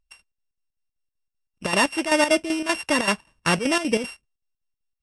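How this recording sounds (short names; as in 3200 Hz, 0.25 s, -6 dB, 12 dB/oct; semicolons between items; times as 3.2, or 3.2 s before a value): a buzz of ramps at a fixed pitch in blocks of 16 samples; chopped level 5.2 Hz, depth 65%, duty 65%; MP3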